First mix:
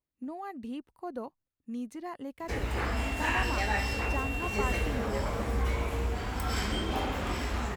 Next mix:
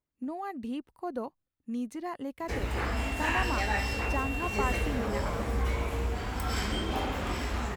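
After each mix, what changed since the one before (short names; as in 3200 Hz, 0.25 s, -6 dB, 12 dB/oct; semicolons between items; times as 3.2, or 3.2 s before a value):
speech +3.0 dB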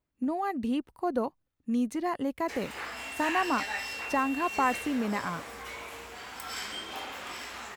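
speech +6.0 dB; background: add HPF 1500 Hz 6 dB/oct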